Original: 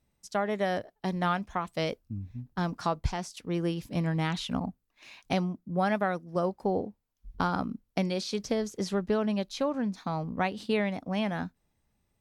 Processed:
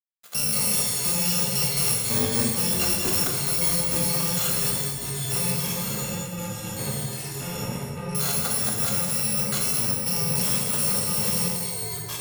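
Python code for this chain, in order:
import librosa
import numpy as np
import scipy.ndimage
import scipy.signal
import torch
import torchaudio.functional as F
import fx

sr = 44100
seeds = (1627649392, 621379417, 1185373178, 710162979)

y = fx.bit_reversed(x, sr, seeds[0], block=128)
y = scipy.signal.sosfilt(scipy.signal.butter(2, 240.0, 'highpass', fs=sr, output='sos'), y)
y = fx.low_shelf(y, sr, hz=480.0, db=8.5)
y = fx.level_steps(y, sr, step_db=21)
y = fx.leveller(y, sr, passes=3)
y = fx.rider(y, sr, range_db=5, speed_s=0.5)
y = np.sign(y) * np.maximum(np.abs(y) - 10.0 ** (-54.0 / 20.0), 0.0)
y = fx.gaussian_blur(y, sr, sigma=3.4, at=(5.51, 8.15))
y = fx.echo_pitch(y, sr, ms=90, semitones=-4, count=3, db_per_echo=-6.0)
y = y + 10.0 ** (-9.5 / 20.0) * np.pad(y, (int(214 * sr / 1000.0), 0))[:len(y)]
y = fx.rev_gated(y, sr, seeds[1], gate_ms=420, shape='falling', drr_db=-1.0)
y = F.gain(torch.from_numpy(y), 7.0).numpy()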